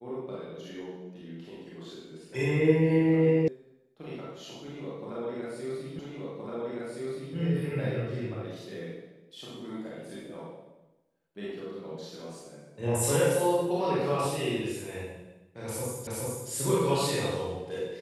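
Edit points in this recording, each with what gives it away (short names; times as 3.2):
3.48 sound cut off
5.99 repeat of the last 1.37 s
16.07 repeat of the last 0.42 s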